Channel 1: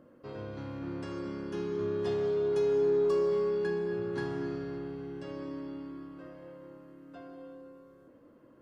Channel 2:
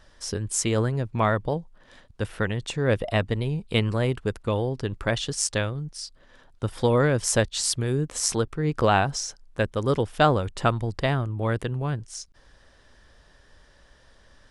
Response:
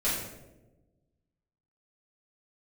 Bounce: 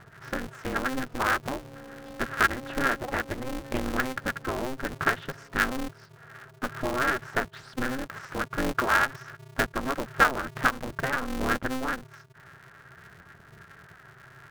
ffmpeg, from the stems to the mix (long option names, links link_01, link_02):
-filter_complex "[0:a]highpass=frequency=350:width=0.5412,highpass=frequency=350:width=1.3066,volume=-11.5dB[link_01];[1:a]acompressor=threshold=-25dB:ratio=12,flanger=delay=0.2:depth=6.5:regen=16:speed=0.52:shape=sinusoidal,lowpass=frequency=1500:width_type=q:width=12,volume=1dB,asplit=2[link_02][link_03];[link_03]apad=whole_len=379901[link_04];[link_01][link_04]sidechaincompress=threshold=-38dB:ratio=8:attack=39:release=129[link_05];[link_05][link_02]amix=inputs=2:normalize=0,aeval=exprs='val(0)*sgn(sin(2*PI*130*n/s))':channel_layout=same"